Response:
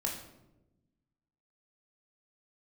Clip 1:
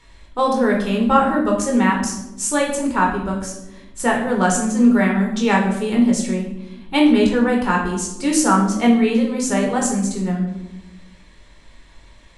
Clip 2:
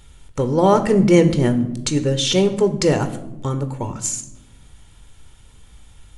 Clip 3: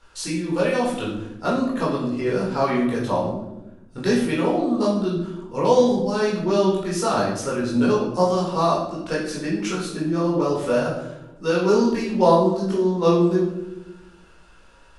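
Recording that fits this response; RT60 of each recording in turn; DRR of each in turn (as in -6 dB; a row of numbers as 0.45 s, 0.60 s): 1; 1.0 s, 1.0 s, 1.0 s; -1.0 dB, 8.5 dB, -6.0 dB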